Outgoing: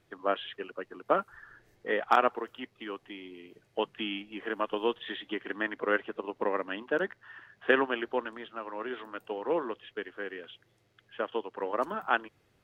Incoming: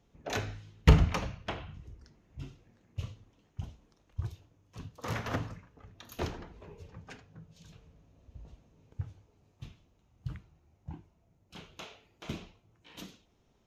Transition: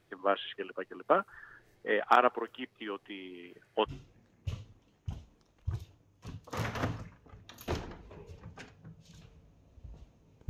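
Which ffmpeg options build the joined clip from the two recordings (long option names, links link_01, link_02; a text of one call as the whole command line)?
ffmpeg -i cue0.wav -i cue1.wav -filter_complex "[0:a]asettb=1/sr,asplit=3[link_01][link_02][link_03];[link_01]atrim=end=3.434[link_04];[link_02]atrim=start=3.43:end=3.93,asetpts=PTS-STARTPTS,afade=type=in:duration=0.004:curve=qsin,afade=type=out:start_time=0.496:duration=0.004:curve=qsin,equalizer=frequency=1600:width=1.5:gain=8.5[link_05];[link_03]atrim=start=3.926[link_06];[link_04][link_05]acrossfade=duration=0.004:curve1=hsin:curve2=qsin[link_07];[link_07][link_06]acrossfade=duration=0.004:curve1=qsin:curve2=hsin,apad=whole_dur=10.49,atrim=end=10.49,atrim=end=3.93,asetpts=PTS-STARTPTS[link_08];[1:a]atrim=start=2.34:end=9,asetpts=PTS-STARTPTS[link_09];[link_08][link_09]acrossfade=duration=0.1:curve1=tri:curve2=tri" out.wav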